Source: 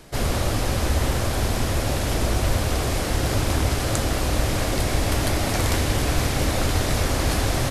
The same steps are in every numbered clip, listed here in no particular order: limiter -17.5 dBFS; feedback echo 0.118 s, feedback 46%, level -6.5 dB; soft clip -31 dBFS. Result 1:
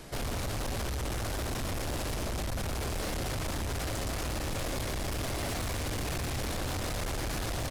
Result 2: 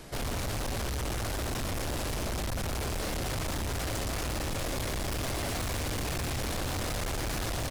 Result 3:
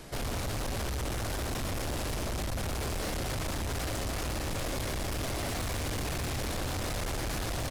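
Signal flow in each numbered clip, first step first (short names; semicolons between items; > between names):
feedback echo > limiter > soft clip; feedback echo > soft clip > limiter; limiter > feedback echo > soft clip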